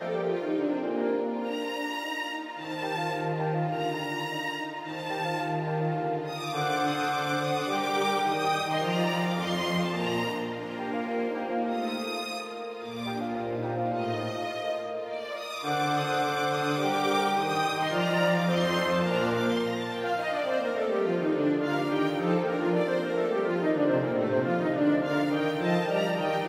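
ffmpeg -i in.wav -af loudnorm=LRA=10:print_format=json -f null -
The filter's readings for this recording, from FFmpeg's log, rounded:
"input_i" : "-28.3",
"input_tp" : "-13.7",
"input_lra" : "4.9",
"input_thresh" : "-38.3",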